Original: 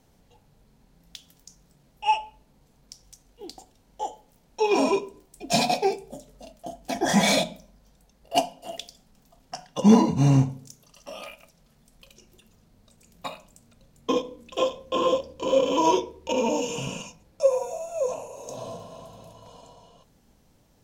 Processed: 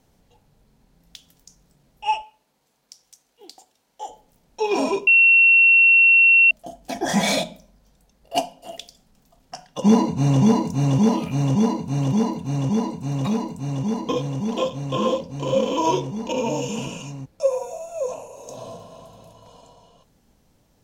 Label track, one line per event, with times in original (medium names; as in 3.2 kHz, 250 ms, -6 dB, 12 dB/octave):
2.220000	4.090000	high-pass 760 Hz 6 dB/octave
5.070000	6.510000	bleep 2.72 kHz -10 dBFS
9.630000	10.410000	echo throw 570 ms, feedback 85%, level -1.5 dB